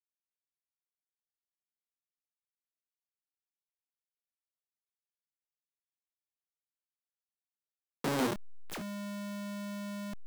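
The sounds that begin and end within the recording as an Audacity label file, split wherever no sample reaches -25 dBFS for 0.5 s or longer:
8.040000	8.330000	sound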